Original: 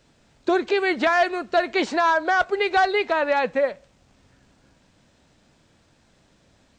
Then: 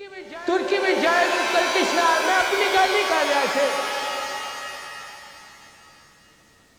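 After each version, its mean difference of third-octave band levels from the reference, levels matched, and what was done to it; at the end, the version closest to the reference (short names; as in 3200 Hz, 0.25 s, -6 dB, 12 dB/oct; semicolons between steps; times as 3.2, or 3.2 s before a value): 11.0 dB: high shelf 6700 Hz +11 dB; reverse echo 0.711 s -16.5 dB; shimmer reverb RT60 3.1 s, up +7 st, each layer -2 dB, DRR 4 dB; gain -1.5 dB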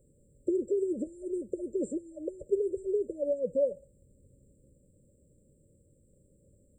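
15.0 dB: bell 260 Hz -6.5 dB 1.1 oct; limiter -17.5 dBFS, peak gain reduction 7 dB; brick-wall FIR band-stop 600–7200 Hz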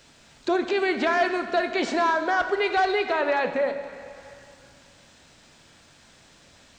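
4.5 dB: limiter -16 dBFS, peak gain reduction 5 dB; plate-style reverb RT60 2 s, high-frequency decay 0.8×, DRR 7 dB; mismatched tape noise reduction encoder only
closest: third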